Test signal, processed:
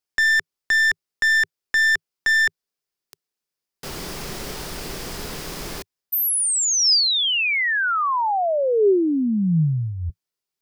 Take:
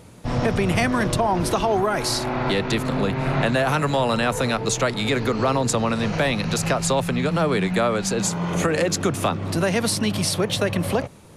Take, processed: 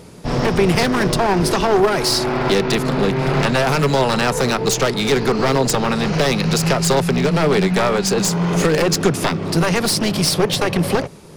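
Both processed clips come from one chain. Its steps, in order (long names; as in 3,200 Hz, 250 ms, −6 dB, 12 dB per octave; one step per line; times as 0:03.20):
wavefolder on the positive side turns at −20 dBFS
thirty-one-band graphic EQ 100 Hz −9 dB, 160 Hz +5 dB, 400 Hz +7 dB, 5,000 Hz +6 dB
level +4.5 dB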